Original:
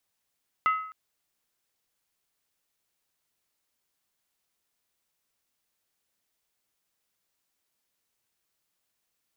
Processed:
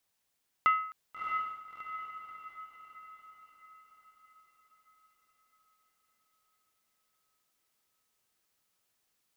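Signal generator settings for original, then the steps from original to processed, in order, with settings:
skin hit length 0.26 s, lowest mode 1.28 kHz, decay 0.62 s, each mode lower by 9.5 dB, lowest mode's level -18.5 dB
echo that smears into a reverb 658 ms, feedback 51%, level -5 dB

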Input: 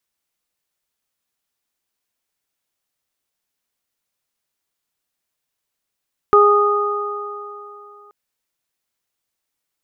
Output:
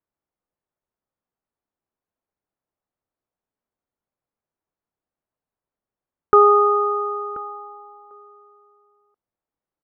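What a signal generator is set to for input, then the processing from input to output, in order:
additive tone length 1.78 s, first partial 412 Hz, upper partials -10.5/1 dB, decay 2.76 s, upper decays 3.07/2.94 s, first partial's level -10 dB
level-controlled noise filter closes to 980 Hz, open at -18.5 dBFS; delay 1033 ms -18.5 dB

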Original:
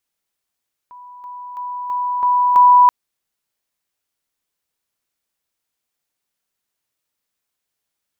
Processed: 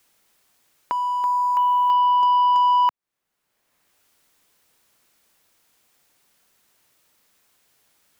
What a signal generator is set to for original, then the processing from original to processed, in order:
level ladder 986 Hz -36 dBFS, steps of 6 dB, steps 6, 0.33 s 0.00 s
compression 6:1, threshold -20 dBFS; waveshaping leveller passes 2; three bands compressed up and down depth 70%

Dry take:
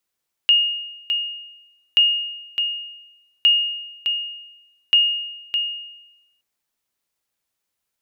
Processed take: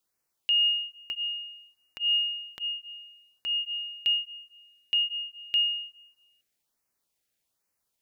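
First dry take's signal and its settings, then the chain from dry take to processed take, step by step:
sonar ping 2.85 kHz, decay 0.99 s, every 1.48 s, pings 4, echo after 0.61 s, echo -7 dB -8.5 dBFS
peak limiter -19 dBFS; LFO notch sine 1.2 Hz 960–3600 Hz

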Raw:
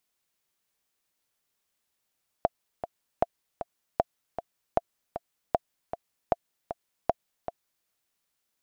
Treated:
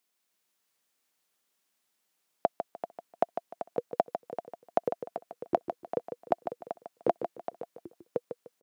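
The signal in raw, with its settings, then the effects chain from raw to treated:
metronome 155 bpm, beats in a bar 2, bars 7, 686 Hz, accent 10.5 dB -8.5 dBFS
high-pass 180 Hz 24 dB/octave; ever faster or slower copies 316 ms, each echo -6 st, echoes 2, each echo -6 dB; feedback delay 150 ms, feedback 25%, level -8.5 dB

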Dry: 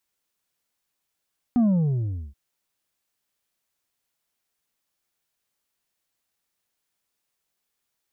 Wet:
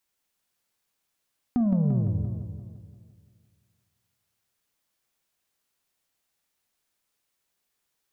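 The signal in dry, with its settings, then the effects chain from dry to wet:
sub drop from 250 Hz, over 0.78 s, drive 4.5 dB, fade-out 0.74 s, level -16.5 dB
compression 2.5:1, threshold -24 dBFS; spring tank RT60 1.2 s, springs 47 ms, DRR 12.5 dB; modulated delay 172 ms, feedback 56%, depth 192 cents, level -6 dB

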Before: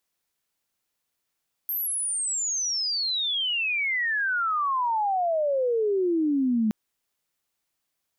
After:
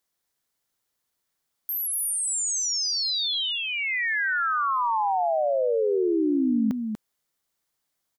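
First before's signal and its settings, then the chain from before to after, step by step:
sweep logarithmic 13 kHz -> 210 Hz -25.5 dBFS -> -20 dBFS 5.02 s
peaking EQ 2.6 kHz -5.5 dB 0.32 oct; on a send: delay 241 ms -6 dB

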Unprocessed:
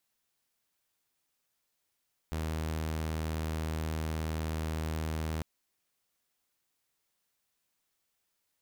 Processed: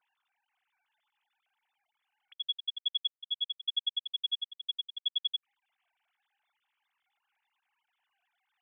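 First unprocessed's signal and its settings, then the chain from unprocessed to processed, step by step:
tone saw 79.1 Hz -29.5 dBFS 3.10 s
formants replaced by sine waves; upward expansion 2.5:1, over -45 dBFS

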